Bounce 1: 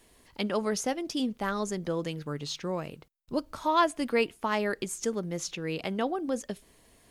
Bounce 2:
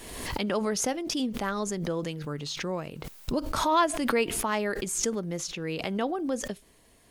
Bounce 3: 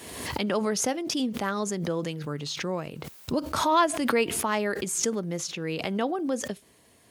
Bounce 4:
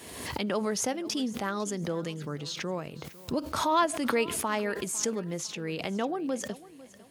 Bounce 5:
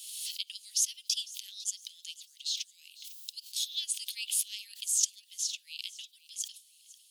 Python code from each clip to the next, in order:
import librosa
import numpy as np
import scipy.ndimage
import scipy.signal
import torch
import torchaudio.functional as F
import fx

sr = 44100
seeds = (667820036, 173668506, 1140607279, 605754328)

y1 = fx.pre_swell(x, sr, db_per_s=41.0)
y2 = scipy.signal.sosfilt(scipy.signal.butter(4, 73.0, 'highpass', fs=sr, output='sos'), y1)
y2 = F.gain(torch.from_numpy(y2), 1.5).numpy()
y3 = fx.echo_feedback(y2, sr, ms=502, feedback_pct=35, wet_db=-19)
y3 = F.gain(torch.from_numpy(y3), -3.0).numpy()
y4 = scipy.signal.sosfilt(scipy.signal.butter(8, 3000.0, 'highpass', fs=sr, output='sos'), y3)
y4 = F.gain(torch.from_numpy(y4), 4.5).numpy()